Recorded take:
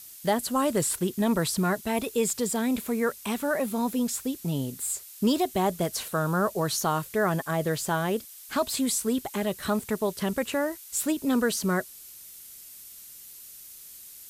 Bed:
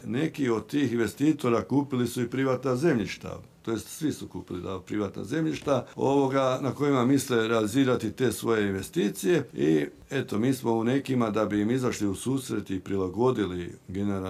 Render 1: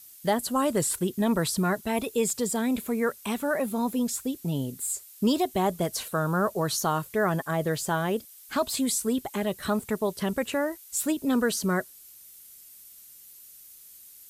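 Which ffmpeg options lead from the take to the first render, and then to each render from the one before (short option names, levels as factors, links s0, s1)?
-af "afftdn=nr=6:nf=-47"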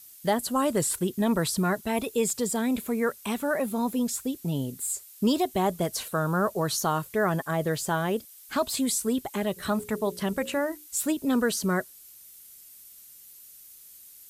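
-filter_complex "[0:a]asplit=3[s0][s1][s2];[s0]afade=t=out:st=9.56:d=0.02[s3];[s1]bandreject=f=60:t=h:w=6,bandreject=f=120:t=h:w=6,bandreject=f=180:t=h:w=6,bandreject=f=240:t=h:w=6,bandreject=f=300:t=h:w=6,bandreject=f=360:t=h:w=6,bandreject=f=420:t=h:w=6,bandreject=f=480:t=h:w=6,bandreject=f=540:t=h:w=6,afade=t=in:st=9.56:d=0.02,afade=t=out:st=10.86:d=0.02[s4];[s2]afade=t=in:st=10.86:d=0.02[s5];[s3][s4][s5]amix=inputs=3:normalize=0"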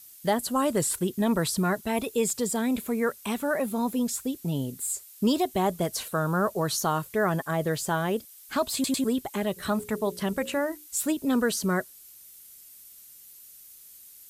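-filter_complex "[0:a]asplit=4[s0][s1][s2][s3];[s0]atrim=end=8.842[s4];[s1]atrim=start=8.738:end=8.842[s5];[s2]atrim=start=8.738:end=8.842[s6];[s3]atrim=start=9.038[s7];[s4][s5]acrossfade=d=0.004:c1=hsin:c2=hsin[s8];[s8][s6]acrossfade=d=0.004:c1=hsin:c2=hsin[s9];[s9][s7]acrossfade=d=0.004:c1=hsin:c2=hsin"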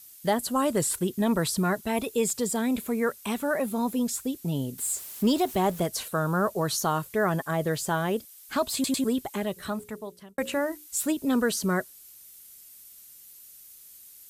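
-filter_complex "[0:a]asettb=1/sr,asplit=3[s0][s1][s2];[s0]atrim=end=4.784[s3];[s1]atrim=start=4.78:end=5.83,asetpts=PTS-STARTPTS,afade=t=in:d=0.004:c=qsin,afade=t=out:st=1.046:d=0.004:c=qsin,aeval=exprs='val(0)+0.5*0.0119*sgn(val(0))':c=same[s4];[s2]atrim=start=5.826[s5];[s3][s4]acrossfade=d=0.004:c1=hsin:c2=qsin[s6];[s6][s5]acrossfade=d=0.004:c1=qsin:c2=hsin,asplit=2[s7][s8];[s7]atrim=end=10.38,asetpts=PTS-STARTPTS,afade=t=out:st=9.25:d=1.13[s9];[s8]atrim=start=10.38,asetpts=PTS-STARTPTS,afade=t=in:d=0.004:c=hsin[s10];[s9][s10]concat=n=2:v=0:a=1"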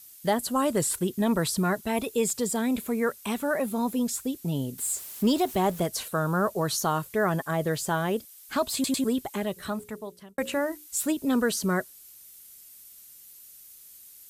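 -af anull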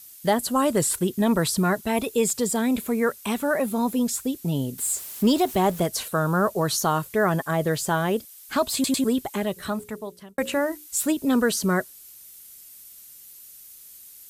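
-af "volume=1.5"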